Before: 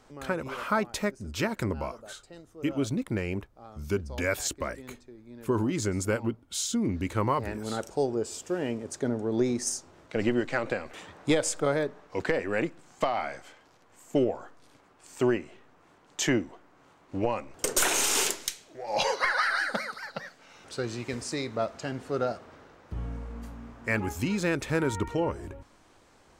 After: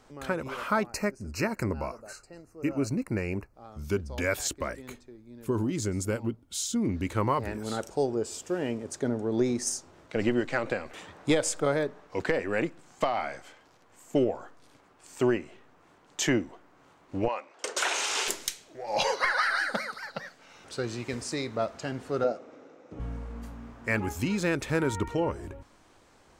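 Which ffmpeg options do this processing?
-filter_complex "[0:a]asettb=1/sr,asplit=3[s0][s1][s2];[s0]atrim=end=0.864[s3];[s1]atrim=start=0.86:end=3.54,asetpts=PTS-STARTPTS,afade=t=in:d=0.004:c=qsin,afade=t=out:st=2.676:d=0.004:c=qsin,asuperstop=centerf=3400:order=12:qfactor=2.8[s4];[s2]atrim=start=3.536[s5];[s3][s4]acrossfade=d=0.004:c1=hsin:c2=qsin[s6];[s6][s5]acrossfade=d=0.004:c1=qsin:c2=hsin,asettb=1/sr,asplit=3[s7][s8][s9];[s7]atrim=end=5.174[s10];[s8]atrim=start=5.17:end=6.76,asetpts=PTS-STARTPTS,afade=t=in:d=0.004:c=qsin,afade=t=out:st=1.586:d=0.004:c=qsin,equalizer=f=1300:w=0.42:g=-5.5[s11];[s9]atrim=start=6.756[s12];[s10][s11]acrossfade=d=0.004:c1=hsin:c2=qsin[s13];[s13][s12]acrossfade=d=0.004:c1=qsin:c2=hsin,asettb=1/sr,asplit=3[s14][s15][s16];[s14]atrim=end=17.284[s17];[s15]atrim=start=17.28:end=18.28,asetpts=PTS-STARTPTS,afade=t=in:d=0.004:c=qsin,afade=t=out:st=0.996:d=0.004:c=qsin,highpass=560,lowpass=5200[s18];[s16]atrim=start=18.276[s19];[s17][s18]acrossfade=d=0.004:c1=hsin:c2=qsin[s20];[s20][s19]acrossfade=d=0.004:c1=qsin:c2=hsin,asettb=1/sr,asplit=3[s21][s22][s23];[s21]atrim=end=22.244[s24];[s22]atrim=start=22.24:end=23,asetpts=PTS-STARTPTS,afade=t=in:d=0.004:c=qsin,afade=t=out:st=0.756:d=0.004:c=qsin,highpass=220,equalizer=f=280:t=q:w=4:g=8,equalizer=f=510:t=q:w=4:g=7,equalizer=f=990:t=q:w=4:g=-7,equalizer=f=1700:t=q:w=4:g=-8,equalizer=f=3100:t=q:w=4:g=-7,equalizer=f=4500:t=q:w=4:g=-8,lowpass=f=7100:w=0.5412,lowpass=f=7100:w=1.3066[s25];[s23]atrim=start=22.996[s26];[s24][s25]acrossfade=d=0.004:c1=hsin:c2=qsin[s27];[s27][s26]acrossfade=d=0.004:c1=qsin:c2=hsin"

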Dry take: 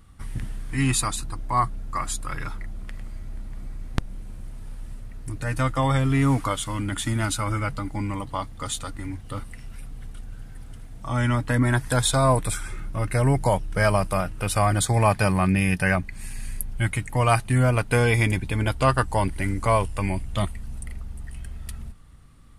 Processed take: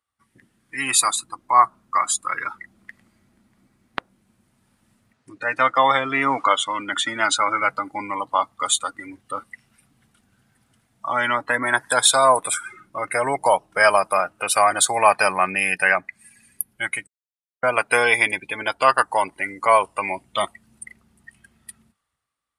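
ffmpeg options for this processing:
-filter_complex "[0:a]asettb=1/sr,asplit=3[s0][s1][s2];[s0]atrim=end=5.134[s3];[s1]atrim=start=5.13:end=7.62,asetpts=PTS-STARTPTS,afade=t=in:d=0.004:c=qsin,afade=t=out:st=2.486:d=0.004:c=qsin,highpass=110,lowpass=6800[s4];[s2]atrim=start=7.616[s5];[s3][s4]acrossfade=d=0.004:c1=hsin:c2=qsin[s6];[s6][s5]acrossfade=d=0.004:c1=qsin:c2=hsin,asplit=3[s7][s8][s9];[s7]atrim=end=17.07,asetpts=PTS-STARTPTS,afade=t=out:st=17.066:d=0.004:c=hsin[s10];[s8]atrim=start=17.07:end=17.63,asetpts=PTS-STARTPTS,volume=0[s11];[s9]atrim=start=17.63,asetpts=PTS-STARTPTS,afade=t=in:d=0.004:c=hsin[s12];[s10][s11][s12]concat=n=3:v=0:a=1,afftdn=nr=21:nf=-36,highpass=680,dynaudnorm=f=170:g=9:m=3.76"

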